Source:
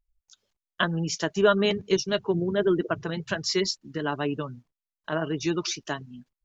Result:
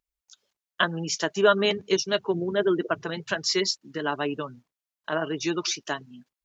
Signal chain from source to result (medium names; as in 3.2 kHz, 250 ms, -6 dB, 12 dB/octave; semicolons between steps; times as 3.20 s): high-pass 350 Hz 6 dB/octave; trim +2.5 dB